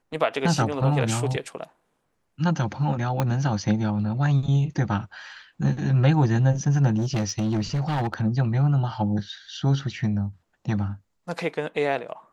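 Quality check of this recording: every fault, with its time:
3.20 s: pop -10 dBFS
6.97–8.22 s: clipped -21 dBFS

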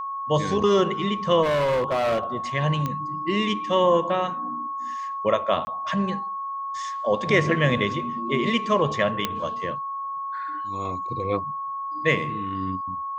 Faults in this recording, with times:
whine 1.1 kHz -28 dBFS
1.42–2.23 s: clipped -19.5 dBFS
2.86 s: pop -14 dBFS
5.65–5.67 s: dropout 20 ms
9.25 s: pop -8 dBFS

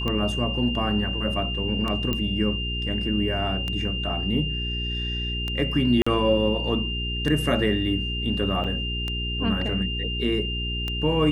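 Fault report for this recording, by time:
hum 60 Hz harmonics 7 -30 dBFS
tick 33 1/3 rpm -15 dBFS
whine 2.8 kHz -29 dBFS
2.13 s: pop -13 dBFS
6.02–6.07 s: dropout 45 ms
8.64–8.65 s: dropout 5.8 ms

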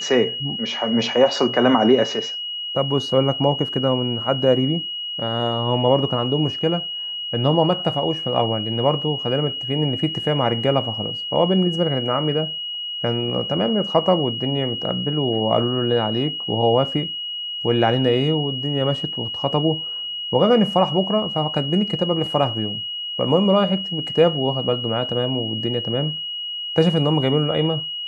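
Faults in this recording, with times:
whine 2.9 kHz -26 dBFS

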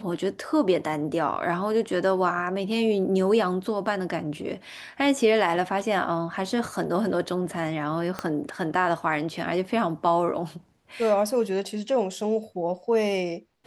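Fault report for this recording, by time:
8.19 s: pop -15 dBFS

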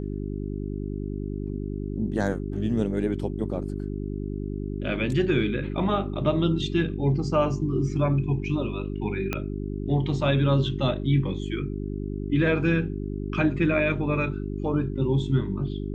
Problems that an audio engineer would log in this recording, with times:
hum 50 Hz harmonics 8 -31 dBFS
9.33 s: pop -12 dBFS

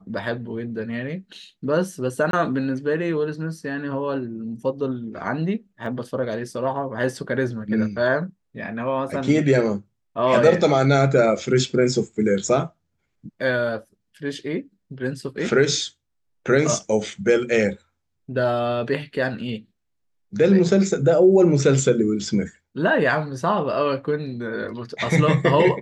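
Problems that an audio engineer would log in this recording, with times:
2.31–2.33 s: dropout 22 ms
5.86 s: dropout 2.2 ms

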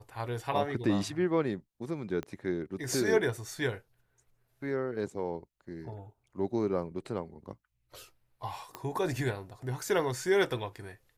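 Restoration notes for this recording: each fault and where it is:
2.23 s: pop -24 dBFS
8.75 s: pop -22 dBFS

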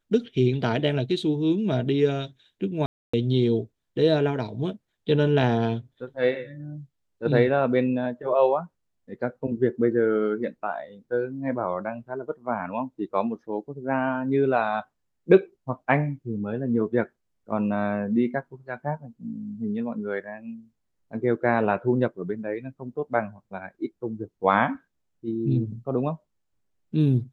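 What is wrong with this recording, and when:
2.86–3.13 s: dropout 275 ms

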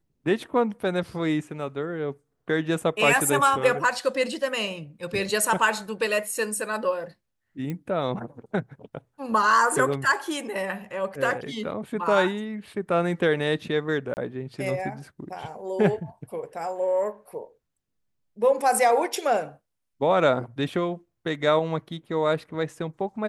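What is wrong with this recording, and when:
7.70 s: pop -20 dBFS
14.14–14.17 s: dropout 29 ms

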